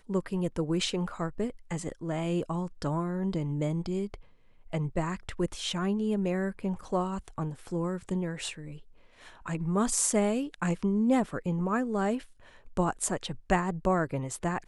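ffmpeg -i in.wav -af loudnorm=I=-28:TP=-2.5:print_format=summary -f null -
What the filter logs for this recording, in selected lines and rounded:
Input Integrated:    -30.8 LUFS
Input True Peak:     -11.2 dBTP
Input LRA:             4.0 LU
Input Threshold:     -41.2 LUFS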